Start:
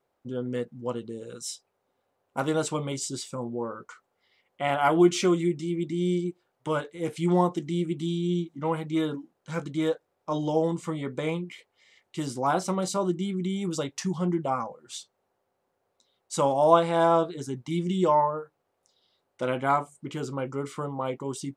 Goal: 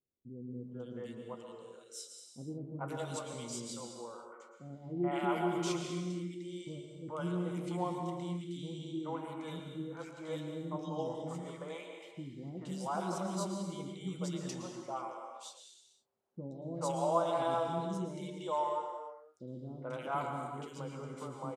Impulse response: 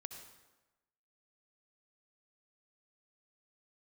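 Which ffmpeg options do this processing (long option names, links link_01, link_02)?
-filter_complex "[0:a]acrossover=split=380|1800[link_01][link_02][link_03];[link_02]adelay=430[link_04];[link_03]adelay=510[link_05];[link_01][link_04][link_05]amix=inputs=3:normalize=0[link_06];[1:a]atrim=start_sample=2205,afade=type=out:start_time=0.34:duration=0.01,atrim=end_sample=15435,asetrate=25137,aresample=44100[link_07];[link_06][link_07]afir=irnorm=-1:irlink=0,volume=-8.5dB"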